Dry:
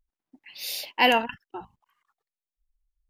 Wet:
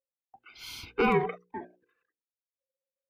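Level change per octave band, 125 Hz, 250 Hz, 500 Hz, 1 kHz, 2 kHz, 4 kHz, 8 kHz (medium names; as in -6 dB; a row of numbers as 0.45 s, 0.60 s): +15.0 dB, +0.5 dB, 0.0 dB, -6.0 dB, -8.0 dB, -15.0 dB, under -10 dB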